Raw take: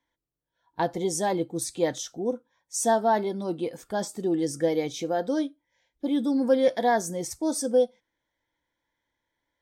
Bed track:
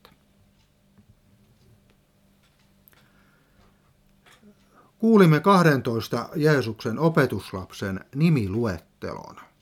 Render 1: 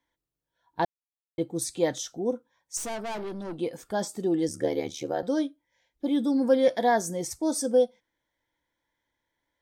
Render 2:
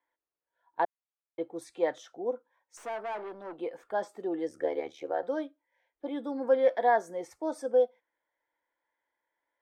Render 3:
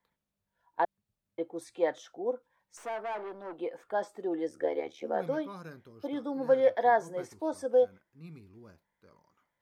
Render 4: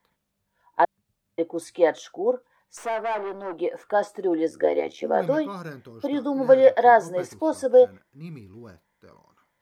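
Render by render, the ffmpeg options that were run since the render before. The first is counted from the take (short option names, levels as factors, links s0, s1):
-filter_complex "[0:a]asettb=1/sr,asplit=3[s0][s1][s2];[s0]atrim=end=2.774[s3];[s1]atrim=start=2.77:end=3.59,asetpts=PTS-STARTPTS,afade=t=in:d=0.004:c=qsin,afade=t=out:st=0.816:d=0.004:c=qsin,aeval=exprs='(tanh(39.8*val(0)+0.4)-tanh(0.4))/39.8':c=same[s4];[s2]atrim=start=3.586[s5];[s3][s4]acrossfade=d=0.004:c1=hsin:c2=qsin[s6];[s6][s5]acrossfade=d=0.004:c1=qsin:c2=hsin,asettb=1/sr,asplit=3[s7][s8][s9];[s7]atrim=end=4.484[s10];[s8]atrim=start=4.48:end=5.23,asetpts=PTS-STARTPTS,afade=t=in:d=0.004:c=qsin,afade=t=out:st=0.746:d=0.004:c=qsin,aeval=exprs='val(0)*sin(2*PI*37*n/s)':c=same[s11];[s9]atrim=start=5.226[s12];[s10][s11]acrossfade=d=0.004:c1=hsin:c2=qsin[s13];[s13][s12]acrossfade=d=0.004:c1=qsin:c2=hsin,asplit=3[s14][s15][s16];[s14]atrim=end=0.85,asetpts=PTS-STARTPTS,afade=t=out:st=0.846:d=0.004:c=hsin[s17];[s15]atrim=start=0.85:end=1.38,asetpts=PTS-STARTPTS,volume=0[s18];[s16]atrim=start=1.38,asetpts=PTS-STARTPTS,afade=t=in:d=0.004:c=hsin[s19];[s17][s18][s19]concat=n=3:v=0:a=1"
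-filter_complex "[0:a]acrossover=split=390 2400:gain=0.0794 1 0.0891[s0][s1][s2];[s0][s1][s2]amix=inputs=3:normalize=0"
-filter_complex "[1:a]volume=0.0398[s0];[0:a][s0]amix=inputs=2:normalize=0"
-af "volume=2.82"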